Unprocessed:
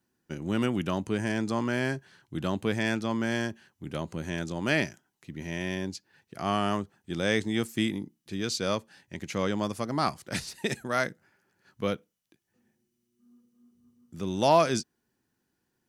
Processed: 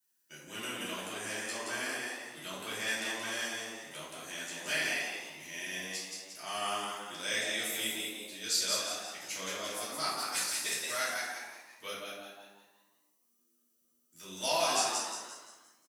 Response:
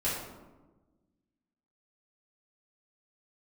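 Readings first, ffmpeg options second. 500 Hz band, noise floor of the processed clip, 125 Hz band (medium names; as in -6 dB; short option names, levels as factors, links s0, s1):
-10.0 dB, -74 dBFS, -21.5 dB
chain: -filter_complex "[0:a]aderivative,asplit=7[s0][s1][s2][s3][s4][s5][s6];[s1]adelay=175,afreqshift=100,volume=0.668[s7];[s2]adelay=350,afreqshift=200,volume=0.295[s8];[s3]adelay=525,afreqshift=300,volume=0.129[s9];[s4]adelay=700,afreqshift=400,volume=0.0569[s10];[s5]adelay=875,afreqshift=500,volume=0.0251[s11];[s6]adelay=1050,afreqshift=600,volume=0.011[s12];[s0][s7][s8][s9][s10][s11][s12]amix=inputs=7:normalize=0[s13];[1:a]atrim=start_sample=2205[s14];[s13][s14]afir=irnorm=-1:irlink=0,volume=1.12"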